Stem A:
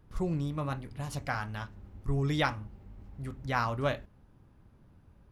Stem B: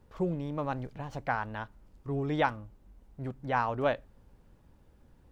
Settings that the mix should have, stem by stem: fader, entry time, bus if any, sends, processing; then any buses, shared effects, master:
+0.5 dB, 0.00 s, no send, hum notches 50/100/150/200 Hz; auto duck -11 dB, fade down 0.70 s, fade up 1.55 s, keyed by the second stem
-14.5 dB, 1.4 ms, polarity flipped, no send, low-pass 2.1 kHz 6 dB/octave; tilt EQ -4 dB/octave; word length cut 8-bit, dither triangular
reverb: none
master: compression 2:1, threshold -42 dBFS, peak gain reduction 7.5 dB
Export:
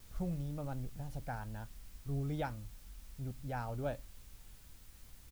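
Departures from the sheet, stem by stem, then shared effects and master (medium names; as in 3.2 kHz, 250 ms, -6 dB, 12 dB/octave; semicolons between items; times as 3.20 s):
stem A +0.5 dB -> -7.5 dB; master: missing compression 2:1, threshold -42 dBFS, peak gain reduction 7.5 dB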